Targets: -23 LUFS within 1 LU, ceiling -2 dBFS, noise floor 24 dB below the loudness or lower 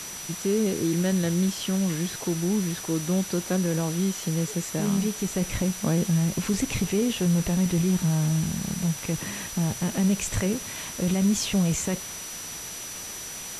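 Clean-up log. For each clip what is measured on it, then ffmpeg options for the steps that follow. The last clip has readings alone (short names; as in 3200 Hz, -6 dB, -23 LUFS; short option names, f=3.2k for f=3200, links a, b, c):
steady tone 5900 Hz; tone level -38 dBFS; noise floor -37 dBFS; noise floor target -50 dBFS; loudness -26.0 LUFS; peak -13.5 dBFS; loudness target -23.0 LUFS
-> -af "bandreject=f=5.9k:w=30"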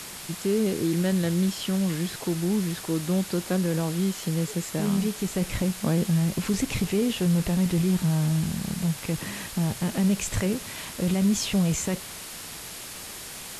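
steady tone none; noise floor -39 dBFS; noise floor target -51 dBFS
-> -af "afftdn=nr=12:nf=-39"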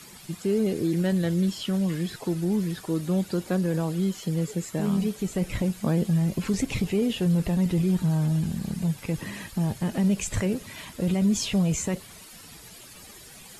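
noise floor -47 dBFS; noise floor target -51 dBFS
-> -af "afftdn=nr=6:nf=-47"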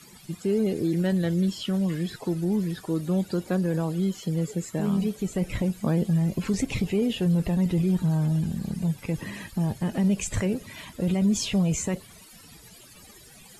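noise floor -50 dBFS; noise floor target -51 dBFS
-> -af "afftdn=nr=6:nf=-50"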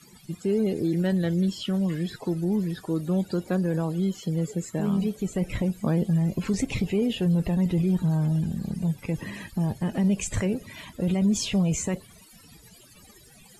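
noise floor -53 dBFS; loudness -26.5 LUFS; peak -15.5 dBFS; loudness target -23.0 LUFS
-> -af "volume=3.5dB"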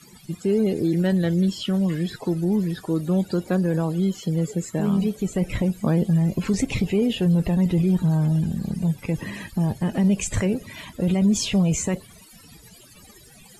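loudness -23.0 LUFS; peak -12.0 dBFS; noise floor -49 dBFS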